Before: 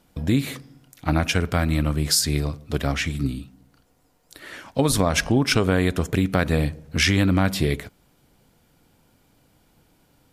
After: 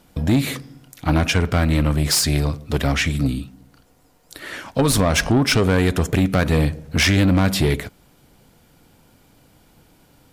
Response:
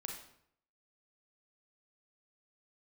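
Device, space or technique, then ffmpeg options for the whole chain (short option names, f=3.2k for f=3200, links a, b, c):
saturation between pre-emphasis and de-emphasis: -filter_complex "[0:a]highshelf=f=6.9k:g=7,asoftclip=type=tanh:threshold=-17dB,highshelf=f=6.9k:g=-7,asettb=1/sr,asplit=3[a][b][c];[a]atrim=end=1.224[d];[b]atrim=start=1.22:end=1.91,asetpts=PTS-STARTPTS,afade=t=in:d=0.004:c=qsin,afade=t=out:st=0.686:d=0.004:c=qsin,highshelf=f=11k:g=-7[e];[c]atrim=start=1.906[f];[d][e]acrossfade=d=0.004:c1=hsin:c2=qsin[g];[g][f]acrossfade=d=0.004:c1=qsin:c2=hsin,volume=6.5dB"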